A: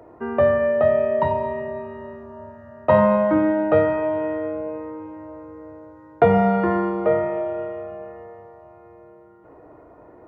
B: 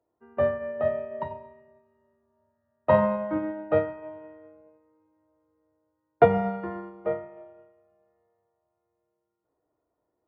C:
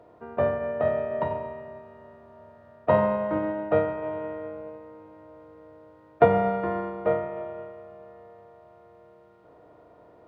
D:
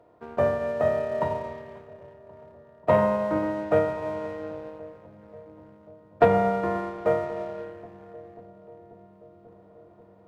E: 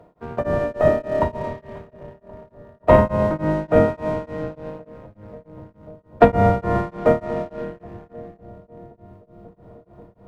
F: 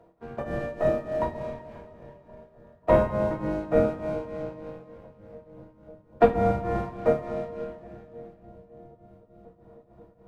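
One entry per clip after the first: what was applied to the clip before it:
expander for the loud parts 2.5 to 1, over −32 dBFS
compressor on every frequency bin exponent 0.6; in parallel at −2 dB: speech leveller within 4 dB 0.5 s; on the sum: level −7.5 dB
leveller curve on the samples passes 1; feedback echo with a low-pass in the loop 538 ms, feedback 83%, low-pass 1,000 Hz, level −20 dB; level −2.5 dB
sub-octave generator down 1 octave, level +2 dB; tremolo along a rectified sine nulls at 3.4 Hz; level +7.5 dB
coupled-rooms reverb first 0.21 s, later 2.9 s, from −21 dB, DRR 1 dB; level −9 dB

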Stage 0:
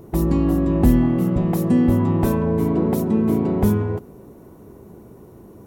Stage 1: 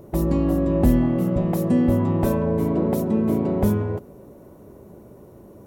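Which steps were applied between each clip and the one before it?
parametric band 580 Hz +10.5 dB 0.21 octaves
level −2.5 dB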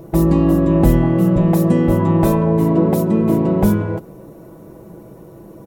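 comb filter 6.1 ms, depth 56%
level +5.5 dB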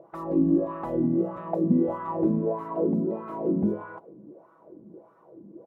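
LFO wah 1.6 Hz 230–1,300 Hz, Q 4
level −1.5 dB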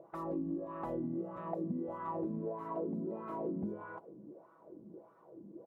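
downward compressor 6 to 1, threshold −30 dBFS, peak gain reduction 13 dB
level −5 dB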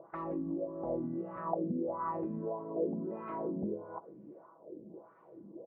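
auto-filter low-pass sine 1 Hz 470–2,400 Hz

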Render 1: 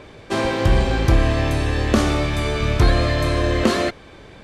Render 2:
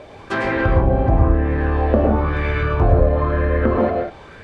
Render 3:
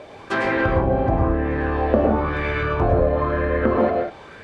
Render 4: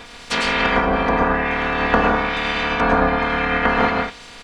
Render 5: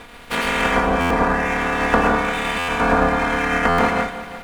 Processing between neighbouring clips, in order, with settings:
treble cut that deepens with the level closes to 790 Hz, closed at −14 dBFS; convolution reverb, pre-delay 92 ms, DRR 0.5 dB; auto-filter bell 1 Hz 630–1,900 Hz +11 dB; level −2.5 dB
low-shelf EQ 98 Hz −11 dB
ceiling on every frequency bin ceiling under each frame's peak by 26 dB; comb filter 4.2 ms, depth 93%; background noise brown −47 dBFS; level −1 dB
running median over 9 samples; echo machine with several playback heads 174 ms, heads first and second, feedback 42%, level −17.5 dB; buffer that repeats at 0:01.00/0:02.58/0:03.68, samples 512, times 8

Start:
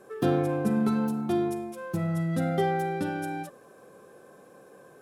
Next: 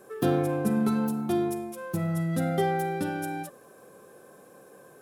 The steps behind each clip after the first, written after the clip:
high-shelf EQ 9,900 Hz +11.5 dB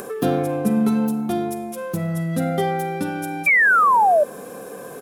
comb filter 4.2 ms, depth 36%
upward compression, threshold −28 dBFS
sound drawn into the spectrogram fall, 0:03.46–0:04.24, 570–2,400 Hz −19 dBFS
level +4.5 dB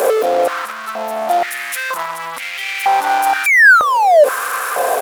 in parallel at −6.5 dB: fuzz pedal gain 42 dB, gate −48 dBFS
on the sum: boost into a limiter +14.5 dB
high-pass on a step sequencer 2.1 Hz 570–2,300 Hz
level −13 dB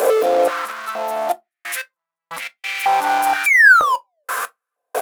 gate pattern "xxxxxxxx..x...x." 91 BPM −60 dB
convolution reverb RT60 0.15 s, pre-delay 6 ms, DRR 10 dB
level −2.5 dB

